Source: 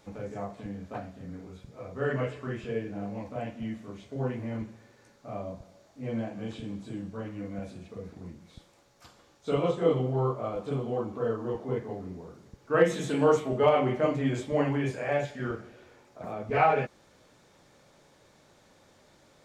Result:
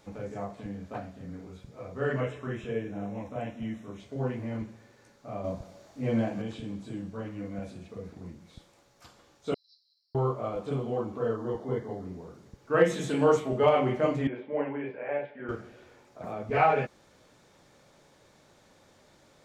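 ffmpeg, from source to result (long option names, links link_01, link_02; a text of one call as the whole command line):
ffmpeg -i in.wav -filter_complex "[0:a]asettb=1/sr,asplit=3[link_01][link_02][link_03];[link_01]atrim=end=2.214[link_04];[link_02]atrim=start=2.21:end=4,asetpts=PTS-STARTPTS,afade=type=in:duration=0.004:curve=qsin,afade=type=out:start_time=1.786:duration=0.004:curve=qsin,asuperstop=centerf=4600:order=8:qfactor=4.7[link_05];[link_03]atrim=start=3.996[link_06];[link_04][link_05]acrossfade=duration=0.004:curve1=hsin:curve2=qsin[link_07];[link_07][link_06]acrossfade=duration=0.004:curve1=qsin:curve2=hsin,asettb=1/sr,asplit=3[link_08][link_09][link_10];[link_08]atrim=end=5.444[link_11];[link_09]atrim=start=5.44:end=6.42,asetpts=PTS-STARTPTS,afade=type=in:duration=0.004:curve=qsin,afade=type=out:start_time=0.976:duration=0.004:curve=qsin,acontrast=36[link_12];[link_10]atrim=start=6.416[link_13];[link_11][link_12]acrossfade=duration=0.004:curve1=hsin:curve2=qsin[link_14];[link_14][link_13]acrossfade=duration=0.004:curve1=qsin:curve2=hsin,asettb=1/sr,asplit=3[link_15][link_16][link_17];[link_15]atrim=end=9.544[link_18];[link_16]atrim=start=9.54:end=10.15,asetpts=PTS-STARTPTS,afade=type=in:duration=0.004:curve=qsin,afade=type=out:start_time=0.606:duration=0.004:curve=qsin,asuperpass=centerf=4700:order=12:qfactor=3.4[link_19];[link_17]atrim=start=10.146[link_20];[link_18][link_19]acrossfade=duration=0.004:curve1=hsin:curve2=qsin[link_21];[link_21][link_20]acrossfade=duration=0.004:curve1=qsin:curve2=hsin,asettb=1/sr,asplit=3[link_22][link_23][link_24];[link_22]atrim=end=11.364[link_25];[link_23]atrim=start=11.36:end=12.05,asetpts=PTS-STARTPTS,afade=type=in:duration=0.004:curve=qsin,afade=type=out:start_time=0.686:duration=0.004:curve=qsin,asuperstop=centerf=2500:order=4:qfactor=3.8[link_26];[link_24]atrim=start=12.046[link_27];[link_25][link_26]acrossfade=duration=0.004:curve1=hsin:curve2=qsin[link_28];[link_28][link_27]acrossfade=duration=0.004:curve1=qsin:curve2=hsin,asettb=1/sr,asplit=3[link_29][link_30][link_31];[link_29]atrim=end=14.274[link_32];[link_30]atrim=start=14.27:end=15.49,asetpts=PTS-STARTPTS,afade=type=in:duration=0.004:curve=qsin,afade=type=out:start_time=1.216:duration=0.004:curve=qsin,highpass=330,equalizer=frequency=340:width_type=q:width=4:gain=-3,equalizer=frequency=700:width_type=q:width=4:gain=-6,equalizer=frequency=1200:width_type=q:width=4:gain=-9,equalizer=frequency=1800:width_type=q:width=4:gain=-5,lowpass=frequency=2200:width=0.5412,lowpass=frequency=2200:width=1.3066[link_33];[link_31]atrim=start=15.486[link_34];[link_32][link_33]acrossfade=duration=0.004:curve1=hsin:curve2=qsin[link_35];[link_35][link_34]acrossfade=duration=0.004:curve1=qsin:curve2=hsin" out.wav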